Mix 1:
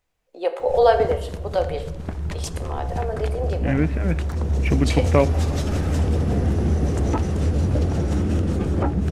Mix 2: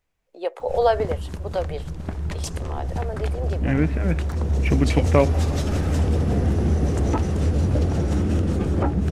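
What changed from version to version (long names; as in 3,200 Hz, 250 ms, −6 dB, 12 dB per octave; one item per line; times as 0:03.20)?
first voice: send off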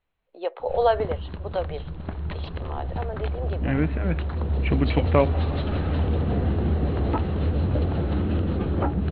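master: add Chebyshev low-pass with heavy ripple 4,200 Hz, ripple 3 dB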